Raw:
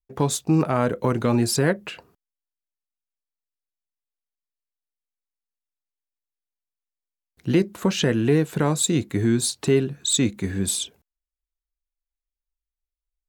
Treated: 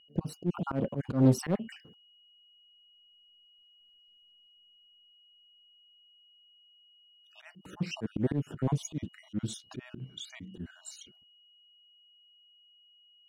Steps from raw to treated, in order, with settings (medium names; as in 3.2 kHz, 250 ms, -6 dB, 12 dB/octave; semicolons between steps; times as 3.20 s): random holes in the spectrogram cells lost 44%; Doppler pass-by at 4.01 s, 33 m/s, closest 17 m; whistle 2.9 kHz -66 dBFS; peaking EQ 190 Hz +13.5 dB 2.5 oct; slow attack 148 ms; treble shelf 5.5 kHz -9 dB; in parallel at -6 dB: hard clipper -33.5 dBFS, distortion -4 dB; on the sum: loudspeaker Doppler distortion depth 0.56 ms; trim +4.5 dB